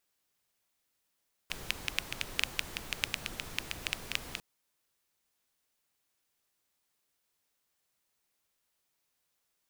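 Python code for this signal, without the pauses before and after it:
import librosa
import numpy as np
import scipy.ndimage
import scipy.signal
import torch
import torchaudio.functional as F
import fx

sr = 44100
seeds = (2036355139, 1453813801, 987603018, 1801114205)

y = fx.rain(sr, seeds[0], length_s=2.9, drops_per_s=7.7, hz=2600.0, bed_db=-5.5)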